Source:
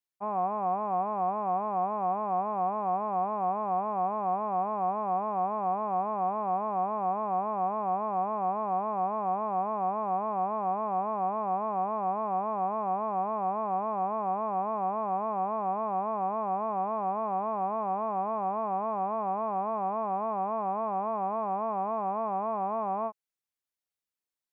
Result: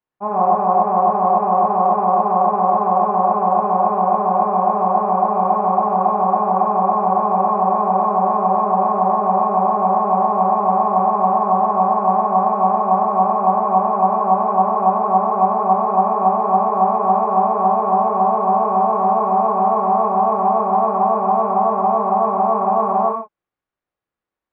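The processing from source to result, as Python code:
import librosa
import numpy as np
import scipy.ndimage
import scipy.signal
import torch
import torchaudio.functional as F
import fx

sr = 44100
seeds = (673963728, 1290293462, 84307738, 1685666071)

y = scipy.signal.sosfilt(scipy.signal.butter(2, 1500.0, 'lowpass', fs=sr, output='sos'), x)
y = fx.rev_gated(y, sr, seeds[0], gate_ms=170, shape='flat', drr_db=-4.5)
y = F.gain(torch.from_numpy(y), 8.5).numpy()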